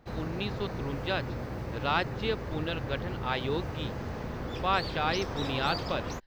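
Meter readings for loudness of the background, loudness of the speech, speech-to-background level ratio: −36.5 LKFS, −33.0 LKFS, 3.5 dB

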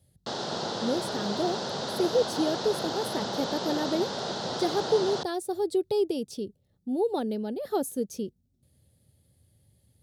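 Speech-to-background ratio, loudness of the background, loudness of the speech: 2.0 dB, −32.5 LKFS, −30.5 LKFS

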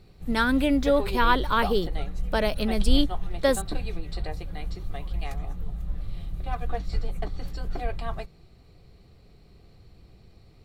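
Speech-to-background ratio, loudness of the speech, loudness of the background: 9.5 dB, −25.0 LKFS, −34.5 LKFS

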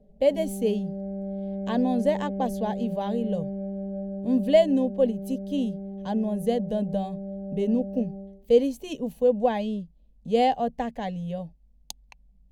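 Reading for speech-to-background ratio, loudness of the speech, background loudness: 8.0 dB, −26.5 LKFS, −34.5 LKFS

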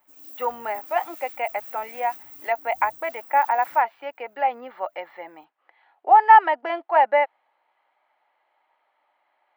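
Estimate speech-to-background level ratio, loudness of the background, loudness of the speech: 18.0 dB, −40.0 LKFS, −22.0 LKFS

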